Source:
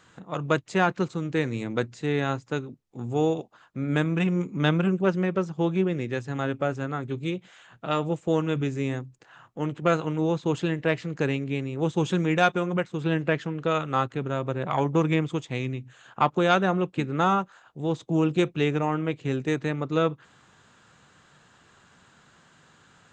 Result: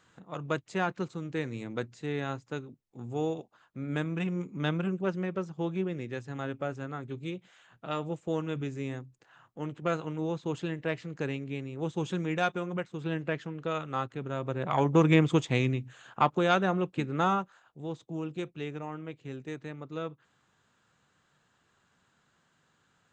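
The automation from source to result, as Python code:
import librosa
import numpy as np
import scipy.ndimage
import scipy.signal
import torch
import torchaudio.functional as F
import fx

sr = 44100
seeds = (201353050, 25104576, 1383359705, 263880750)

y = fx.gain(x, sr, db=fx.line((14.17, -7.5), (15.41, 4.5), (16.41, -4.0), (17.25, -4.0), (18.2, -13.0)))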